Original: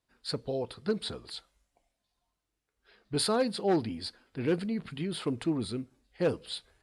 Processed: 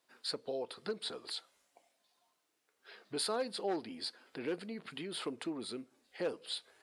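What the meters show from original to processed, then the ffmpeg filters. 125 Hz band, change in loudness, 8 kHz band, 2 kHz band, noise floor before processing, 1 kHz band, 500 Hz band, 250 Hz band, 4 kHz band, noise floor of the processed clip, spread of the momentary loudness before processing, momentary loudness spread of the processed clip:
-18.0 dB, -7.5 dB, -4.5 dB, -4.5 dB, -85 dBFS, -6.0 dB, -7.5 dB, -11.0 dB, -3.0 dB, -80 dBFS, 12 LU, 8 LU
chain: -af "acompressor=threshold=-50dB:ratio=2,highpass=340,volume=7dB"

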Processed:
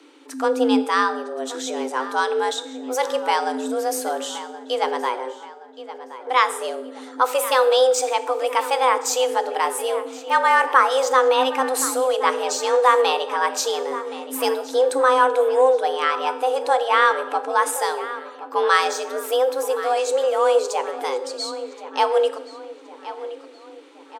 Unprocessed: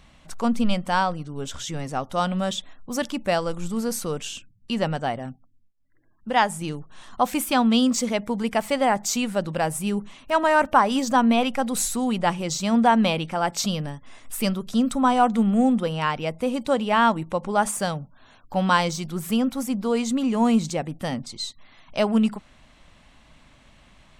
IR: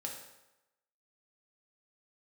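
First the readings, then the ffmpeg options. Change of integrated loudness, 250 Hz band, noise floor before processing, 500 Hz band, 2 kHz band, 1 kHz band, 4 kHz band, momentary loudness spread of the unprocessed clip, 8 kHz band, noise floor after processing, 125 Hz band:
+3.0 dB, -9.0 dB, -55 dBFS, +7.0 dB, +4.5 dB, +4.0 dB, +3.0 dB, 13 LU, +2.5 dB, -43 dBFS, under -35 dB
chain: -filter_complex "[0:a]afreqshift=260,asplit=2[a][b];[b]adelay=1072,lowpass=f=3.6k:p=1,volume=-14dB,asplit=2[c][d];[d]adelay=1072,lowpass=f=3.6k:p=1,volume=0.5,asplit=2[e][f];[f]adelay=1072,lowpass=f=3.6k:p=1,volume=0.5,asplit=2[g][h];[h]adelay=1072,lowpass=f=3.6k:p=1,volume=0.5,asplit=2[i][j];[j]adelay=1072,lowpass=f=3.6k:p=1,volume=0.5[k];[a][c][e][g][i][k]amix=inputs=6:normalize=0,asplit=2[l][m];[1:a]atrim=start_sample=2205[n];[m][n]afir=irnorm=-1:irlink=0,volume=-4dB[o];[l][o]amix=inputs=2:normalize=0,volume=-1dB"

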